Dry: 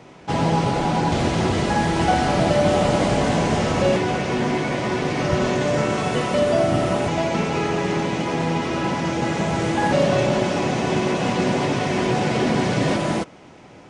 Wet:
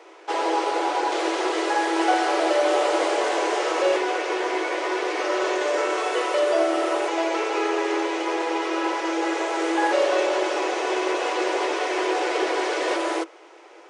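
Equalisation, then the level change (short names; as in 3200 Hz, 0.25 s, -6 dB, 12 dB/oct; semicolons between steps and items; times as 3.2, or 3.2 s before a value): rippled Chebyshev high-pass 320 Hz, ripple 3 dB; +1.0 dB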